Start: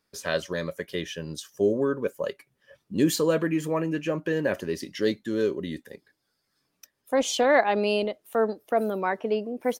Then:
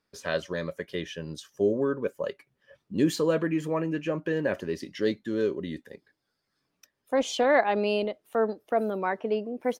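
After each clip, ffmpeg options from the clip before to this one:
-af "highshelf=f=6.8k:g=-11,volume=-1.5dB"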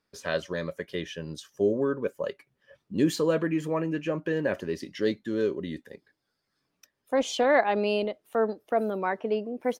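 -af anull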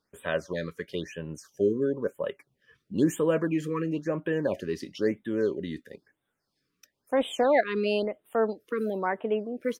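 -af "afftfilt=real='re*(1-between(b*sr/1024,680*pow(5600/680,0.5+0.5*sin(2*PI*1*pts/sr))/1.41,680*pow(5600/680,0.5+0.5*sin(2*PI*1*pts/sr))*1.41))':imag='im*(1-between(b*sr/1024,680*pow(5600/680,0.5+0.5*sin(2*PI*1*pts/sr))/1.41,680*pow(5600/680,0.5+0.5*sin(2*PI*1*pts/sr))*1.41))':win_size=1024:overlap=0.75"

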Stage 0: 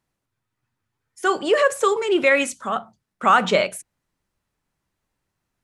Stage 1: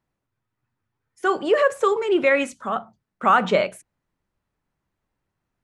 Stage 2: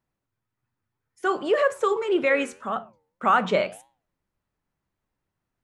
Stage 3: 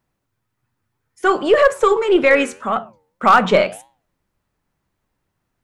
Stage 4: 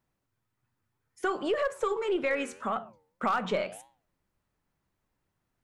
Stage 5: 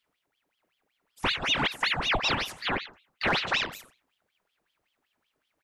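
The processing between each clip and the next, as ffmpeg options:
-af "highshelf=f=3.5k:g=-11.5"
-af "flanger=delay=7.8:depth=4.2:regen=-87:speed=1.8:shape=sinusoidal,volume=1.5dB"
-af "aeval=exprs='0.398*(cos(1*acos(clip(val(0)/0.398,-1,1)))-cos(1*PI/2))+0.0178*(cos(4*acos(clip(val(0)/0.398,-1,1)))-cos(4*PI/2))':c=same,asoftclip=type=hard:threshold=-12dB,volume=8.5dB"
-af "acompressor=threshold=-22dB:ratio=3,volume=-6.5dB"
-af "aecho=1:1:89:0.158,aeval=exprs='val(0)*sin(2*PI*1800*n/s+1800*0.85/5.3*sin(2*PI*5.3*n/s))':c=same,volume=4.5dB"

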